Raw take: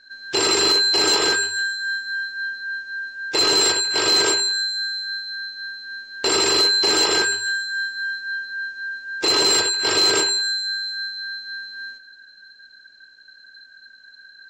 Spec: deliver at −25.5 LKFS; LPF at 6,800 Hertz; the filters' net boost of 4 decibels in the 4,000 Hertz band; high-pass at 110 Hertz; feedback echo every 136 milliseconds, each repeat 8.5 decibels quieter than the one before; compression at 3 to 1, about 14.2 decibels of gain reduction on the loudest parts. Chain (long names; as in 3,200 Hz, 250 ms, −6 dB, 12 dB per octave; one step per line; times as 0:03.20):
high-pass filter 110 Hz
low-pass filter 6,800 Hz
parametric band 4,000 Hz +4.5 dB
downward compressor 3 to 1, threshold −32 dBFS
repeating echo 136 ms, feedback 38%, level −8.5 dB
level +3.5 dB